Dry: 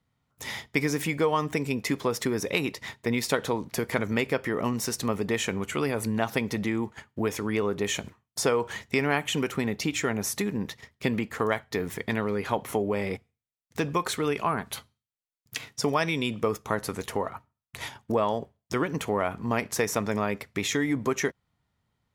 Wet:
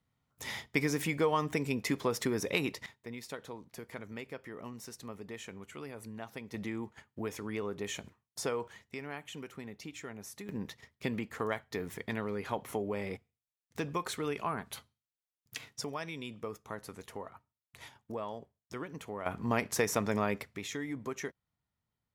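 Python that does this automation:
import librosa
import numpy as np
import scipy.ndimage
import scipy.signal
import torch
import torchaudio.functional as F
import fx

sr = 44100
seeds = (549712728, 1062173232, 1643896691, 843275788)

y = fx.gain(x, sr, db=fx.steps((0.0, -4.5), (2.86, -17.0), (6.54, -10.0), (8.68, -17.0), (10.49, -8.0), (15.84, -14.0), (19.26, -3.5), (20.56, -12.0)))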